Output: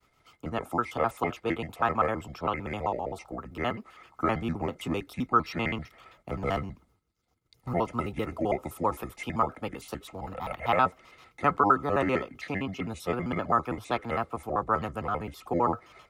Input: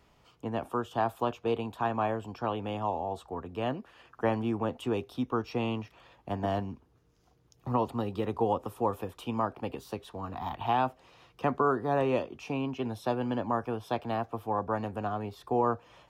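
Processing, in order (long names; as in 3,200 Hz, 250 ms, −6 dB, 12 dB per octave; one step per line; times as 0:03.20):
pitch shifter gated in a rhythm −6 semitones, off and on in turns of 65 ms
high-shelf EQ 4,800 Hz +10 dB
downward expander −58 dBFS
hollow resonant body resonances 1,300/2,100 Hz, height 15 dB, ringing for 40 ms
dynamic equaliser 1,700 Hz, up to +5 dB, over −40 dBFS, Q 0.95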